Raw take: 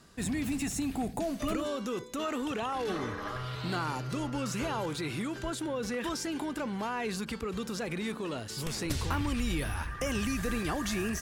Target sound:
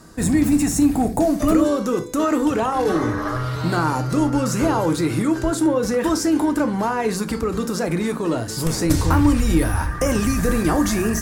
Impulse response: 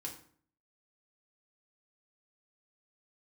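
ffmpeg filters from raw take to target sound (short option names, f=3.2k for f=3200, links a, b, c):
-filter_complex "[0:a]equalizer=f=3k:w=1.1:g=-11,asplit=2[a][b];[1:a]atrim=start_sample=2205,atrim=end_sample=3528[c];[b][c]afir=irnorm=-1:irlink=0,volume=1.5dB[d];[a][d]amix=inputs=2:normalize=0,volume=9dB"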